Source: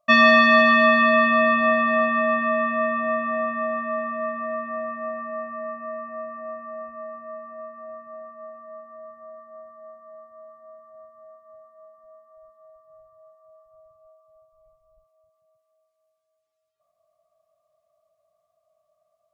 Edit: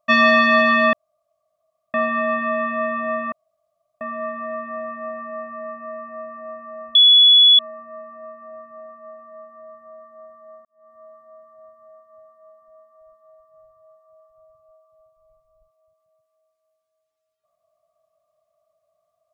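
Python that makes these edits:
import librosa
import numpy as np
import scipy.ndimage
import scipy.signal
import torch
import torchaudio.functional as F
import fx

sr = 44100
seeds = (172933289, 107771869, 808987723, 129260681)

y = fx.edit(x, sr, fx.room_tone_fill(start_s=0.93, length_s=1.01),
    fx.room_tone_fill(start_s=3.32, length_s=0.69),
    fx.insert_tone(at_s=6.95, length_s=0.64, hz=3400.0, db=-7.5),
    fx.fade_in_span(start_s=10.01, length_s=0.29, curve='qua'), tone=tone)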